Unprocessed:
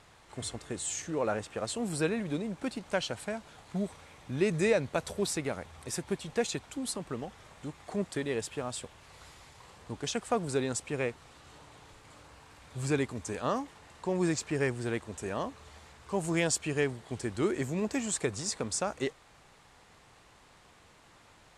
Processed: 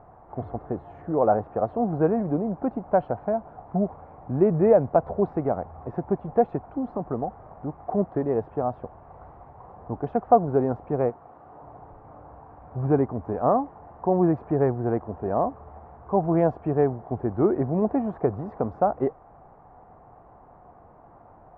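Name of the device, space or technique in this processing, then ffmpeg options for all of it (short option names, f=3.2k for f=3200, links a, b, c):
under water: -filter_complex "[0:a]asettb=1/sr,asplit=3[a][b][c];[a]atrim=end=11.104[d];[b]atrim=start=11.1:end=11.63,asetpts=PTS-STARTPTS,afade=t=in:d=0.004:c=qsin,afade=t=out:st=0.526:d=0.004:c=qsin,highpass=f=230:p=1[e];[c]atrim=start=11.626[f];[d][e]acrossfade=d=0.004:c1=hsin:c2=qsin[g];[g][f]acrossfade=d=0.004:c1=qsin:c2=hsin,lowpass=f=1.1k:w=0.5412,lowpass=f=1.1k:w=1.3066,equalizer=f=720:t=o:w=0.34:g=9.5,volume=8dB"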